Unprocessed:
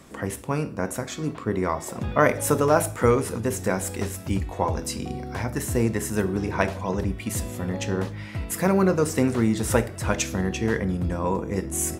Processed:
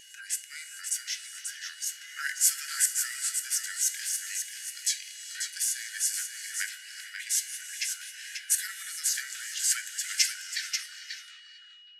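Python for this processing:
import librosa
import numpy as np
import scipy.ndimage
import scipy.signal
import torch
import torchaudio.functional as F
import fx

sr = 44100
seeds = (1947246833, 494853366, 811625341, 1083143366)

p1 = fx.tape_stop_end(x, sr, length_s=1.7)
p2 = scipy.signal.sosfilt(scipy.signal.butter(12, 1800.0, 'highpass', fs=sr, output='sos'), p1)
p3 = fx.tilt_eq(p2, sr, slope=3.5)
p4 = fx.wow_flutter(p3, sr, seeds[0], rate_hz=2.1, depth_cents=19.0)
p5 = fx.formant_shift(p4, sr, semitones=-3)
p6 = p5 + 10.0 ** (-48.0 / 20.0) * np.sin(2.0 * np.pi * 2900.0 * np.arange(len(p5)) / sr)
p7 = p6 + fx.echo_single(p6, sr, ms=538, db=-6.5, dry=0)
p8 = fx.rev_gated(p7, sr, seeds[1], gate_ms=470, shape='rising', drr_db=11.5)
y = F.gain(torch.from_numpy(p8), -5.5).numpy()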